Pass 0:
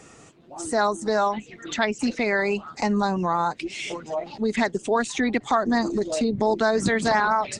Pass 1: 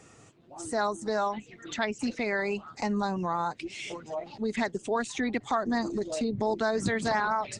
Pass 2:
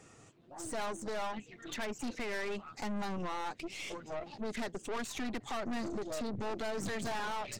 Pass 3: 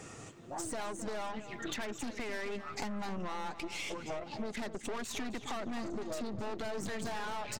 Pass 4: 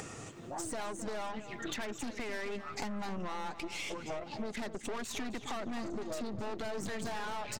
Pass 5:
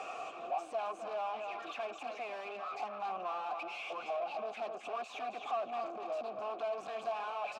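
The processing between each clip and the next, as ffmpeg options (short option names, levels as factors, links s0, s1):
-af "equalizer=f=110:w=3.6:g=7.5,volume=0.473"
-af "aeval=exprs='(tanh(56.2*val(0)+0.65)-tanh(0.65))/56.2':c=same"
-filter_complex "[0:a]acompressor=threshold=0.00562:ratio=12,asplit=2[s0][s1];[s1]adelay=263,lowpass=f=4200:p=1,volume=0.266,asplit=2[s2][s3];[s3]adelay=263,lowpass=f=4200:p=1,volume=0.4,asplit=2[s4][s5];[s5]adelay=263,lowpass=f=4200:p=1,volume=0.4,asplit=2[s6][s7];[s7]adelay=263,lowpass=f=4200:p=1,volume=0.4[s8];[s0][s2][s4][s6][s8]amix=inputs=5:normalize=0,volume=2.99"
-af "acompressor=mode=upward:threshold=0.01:ratio=2.5"
-filter_complex "[0:a]asplit=2[s0][s1];[s1]highpass=f=720:p=1,volume=25.1,asoftclip=type=tanh:threshold=0.0596[s2];[s0][s2]amix=inputs=2:normalize=0,lowpass=f=6000:p=1,volume=0.501,asplit=3[s3][s4][s5];[s3]bandpass=f=730:t=q:w=8,volume=1[s6];[s4]bandpass=f=1090:t=q:w=8,volume=0.501[s7];[s5]bandpass=f=2440:t=q:w=8,volume=0.355[s8];[s6][s7][s8]amix=inputs=3:normalize=0,volume=1.33"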